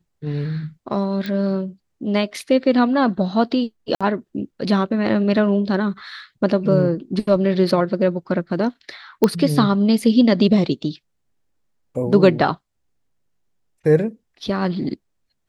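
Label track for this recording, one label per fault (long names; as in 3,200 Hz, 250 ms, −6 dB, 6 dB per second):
1.260000	1.260000	click −15 dBFS
3.950000	4.010000	drop-out 56 ms
9.240000	9.240000	click −4 dBFS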